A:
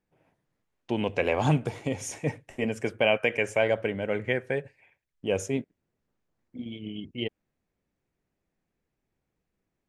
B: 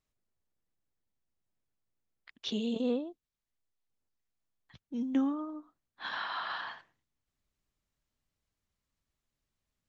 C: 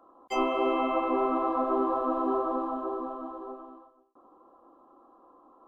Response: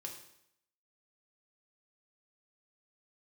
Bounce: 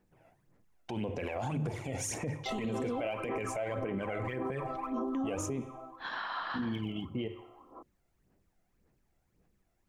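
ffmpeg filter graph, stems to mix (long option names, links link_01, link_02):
-filter_complex "[0:a]bandreject=frequency=50:width_type=h:width=6,bandreject=frequency=100:width_type=h:width=6,bandreject=frequency=150:width_type=h:width=6,alimiter=limit=-16.5dB:level=0:latency=1:release=262,volume=1.5dB,asplit=2[link_01][link_02];[link_02]volume=-8dB[link_03];[1:a]volume=0.5dB[link_04];[2:a]acompressor=threshold=-37dB:ratio=3,adelay=2150,volume=-1dB[link_05];[link_01][link_05]amix=inputs=2:normalize=0,aphaser=in_gain=1:out_gain=1:delay=1.5:decay=0.67:speed=1.8:type=sinusoidal,acompressor=threshold=-24dB:ratio=6,volume=0dB[link_06];[3:a]atrim=start_sample=2205[link_07];[link_03][link_07]afir=irnorm=-1:irlink=0[link_08];[link_04][link_06][link_08]amix=inputs=3:normalize=0,equalizer=frequency=3500:width_type=o:width=1.4:gain=-4.5,alimiter=level_in=3dB:limit=-24dB:level=0:latency=1:release=36,volume=-3dB"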